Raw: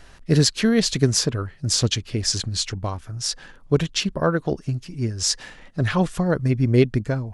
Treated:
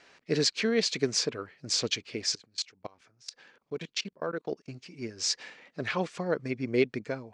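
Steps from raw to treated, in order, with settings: 2.35–4.7 level quantiser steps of 24 dB; speaker cabinet 260–7300 Hz, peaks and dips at 460 Hz +4 dB, 2300 Hz +8 dB, 4500 Hz +3 dB; gain -7.5 dB

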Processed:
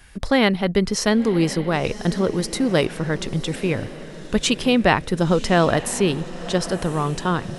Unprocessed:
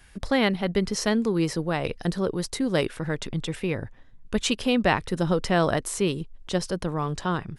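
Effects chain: diffused feedback echo 1.042 s, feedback 44%, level -14.5 dB; gain +5 dB

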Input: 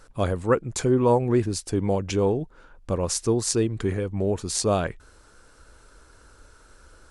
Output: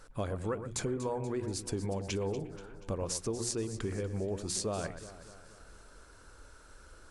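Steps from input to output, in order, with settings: notches 60/120/180/240/300/360 Hz; compressor, threshold -29 dBFS, peak gain reduction 13.5 dB; echo with dull and thin repeats by turns 0.12 s, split 2100 Hz, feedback 72%, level -10.5 dB; gain -3 dB

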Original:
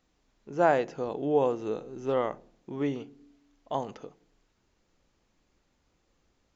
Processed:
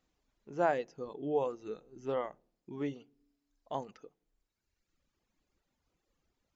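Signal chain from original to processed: reverb removal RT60 1.5 s; gain -6 dB

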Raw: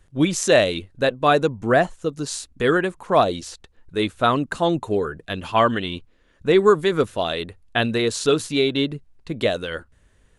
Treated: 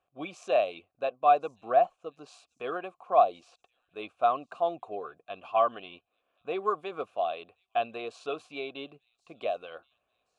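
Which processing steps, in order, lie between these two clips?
vowel filter a; on a send: thin delay 1.075 s, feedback 43%, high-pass 5300 Hz, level -18.5 dB

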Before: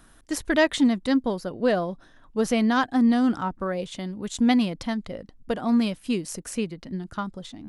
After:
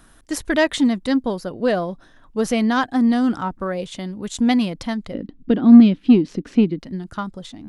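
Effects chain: 5.14–6.79 EQ curve 100 Hz 0 dB, 290 Hz +15 dB, 630 Hz -4 dB, 3700 Hz +1 dB, 10000 Hz -29 dB; in parallel at -7 dB: soft clip -14 dBFS, distortion -8 dB

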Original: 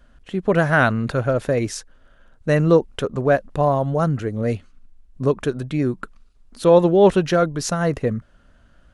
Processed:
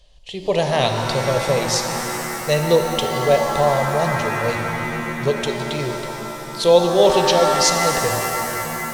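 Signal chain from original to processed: bell 4100 Hz +15 dB 1.8 oct; fixed phaser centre 600 Hz, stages 4; shimmer reverb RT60 3.6 s, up +7 st, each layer -2 dB, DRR 5 dB

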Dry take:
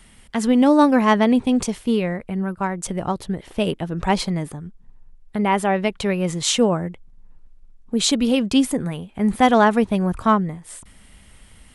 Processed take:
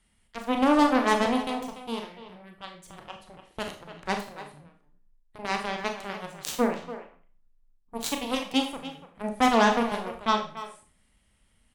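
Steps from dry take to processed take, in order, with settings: added harmonics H 7 -15 dB, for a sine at -2.5 dBFS; speakerphone echo 0.29 s, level -11 dB; Schroeder reverb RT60 0.39 s, combs from 27 ms, DRR 4 dB; gain -7 dB

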